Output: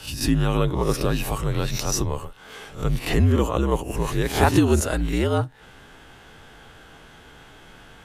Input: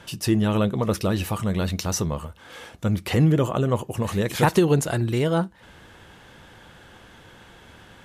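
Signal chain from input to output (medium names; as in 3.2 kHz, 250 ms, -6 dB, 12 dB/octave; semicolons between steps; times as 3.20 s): reverse spectral sustain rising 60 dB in 0.34 s; frequency shift -63 Hz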